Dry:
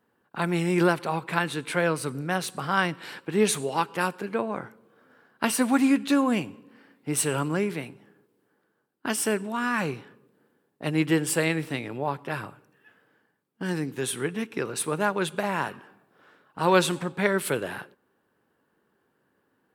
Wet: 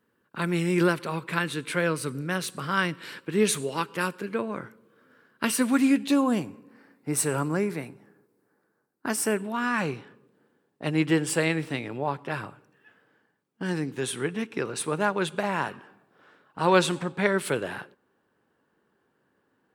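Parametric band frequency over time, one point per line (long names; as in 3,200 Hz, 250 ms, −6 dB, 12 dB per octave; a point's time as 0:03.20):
parametric band −10.5 dB 0.47 octaves
0:05.78 770 Hz
0:06.49 3,100 Hz
0:09.22 3,100 Hz
0:09.71 13,000 Hz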